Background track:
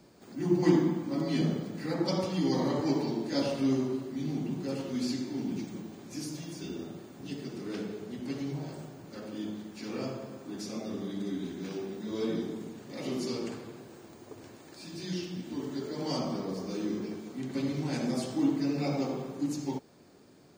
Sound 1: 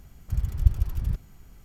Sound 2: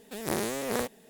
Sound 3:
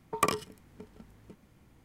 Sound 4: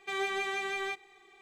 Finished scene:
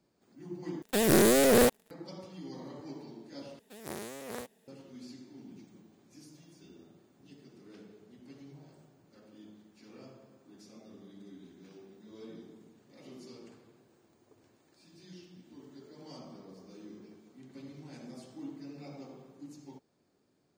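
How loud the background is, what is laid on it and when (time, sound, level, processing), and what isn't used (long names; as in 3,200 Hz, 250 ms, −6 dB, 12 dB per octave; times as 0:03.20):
background track −16 dB
0:00.82: overwrite with 2 −4.5 dB + leveller curve on the samples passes 5
0:03.59: overwrite with 2 −11 dB + high-pass filter 49 Hz
not used: 1, 3, 4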